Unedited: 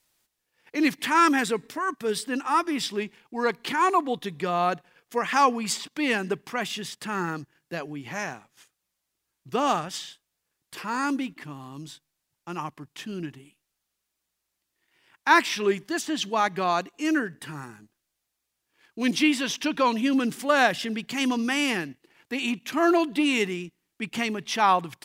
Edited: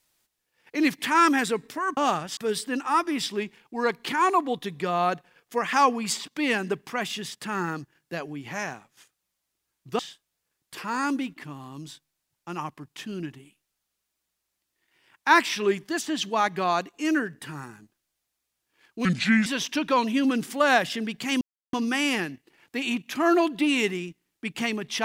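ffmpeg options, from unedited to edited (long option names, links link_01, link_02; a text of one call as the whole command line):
ffmpeg -i in.wav -filter_complex "[0:a]asplit=7[link_01][link_02][link_03][link_04][link_05][link_06][link_07];[link_01]atrim=end=1.972[link_08];[link_02]atrim=start=9.588:end=9.992[link_09];[link_03]atrim=start=1.968:end=9.592[link_10];[link_04]atrim=start=9.988:end=19.054[link_11];[link_05]atrim=start=19.05:end=19.35,asetpts=PTS-STARTPTS,asetrate=32193,aresample=44100,atrim=end_sample=18123,asetpts=PTS-STARTPTS[link_12];[link_06]atrim=start=19.346:end=21.3,asetpts=PTS-STARTPTS,afade=type=out:start_time=1.95:duration=0.004:curve=hsin,apad=pad_dur=0.32[link_13];[link_07]atrim=start=21.3,asetpts=PTS-STARTPTS,afade=type=in:duration=0.004:curve=hsin[link_14];[link_08][link_09]acrossfade=duration=0.004:curve1=hsin:curve2=hsin[link_15];[link_15][link_10]acrossfade=duration=0.004:curve1=hsin:curve2=hsin[link_16];[link_16][link_11]acrossfade=duration=0.004:curve1=hsin:curve2=hsin[link_17];[link_17][link_12]acrossfade=duration=0.004:curve1=hsin:curve2=hsin[link_18];[link_13][link_14]concat=n=2:v=0:a=1[link_19];[link_18][link_19]acrossfade=duration=0.004:curve1=hsin:curve2=hsin" out.wav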